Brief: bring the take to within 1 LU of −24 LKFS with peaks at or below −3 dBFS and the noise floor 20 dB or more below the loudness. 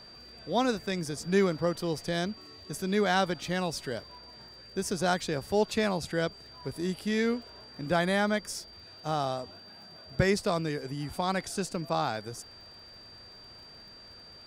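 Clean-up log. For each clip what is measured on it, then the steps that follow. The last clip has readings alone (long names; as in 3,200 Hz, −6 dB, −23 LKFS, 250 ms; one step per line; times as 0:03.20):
crackle rate 50 per second; interfering tone 4,700 Hz; level of the tone −49 dBFS; integrated loudness −30.5 LKFS; sample peak −12.5 dBFS; target loudness −24.0 LKFS
→ click removal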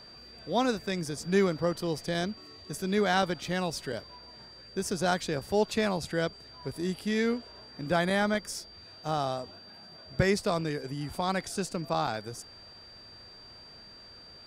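crackle rate 0.069 per second; interfering tone 4,700 Hz; level of the tone −49 dBFS
→ notch filter 4,700 Hz, Q 30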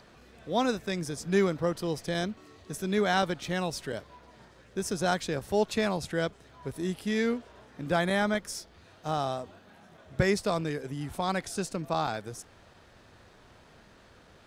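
interfering tone none found; integrated loudness −30.5 LKFS; sample peak −13.0 dBFS; target loudness −24.0 LKFS
→ level +6.5 dB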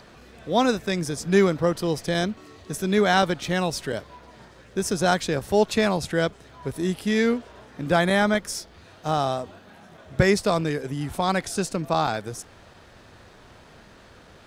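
integrated loudness −24.0 LKFS; sample peak −6.5 dBFS; background noise floor −50 dBFS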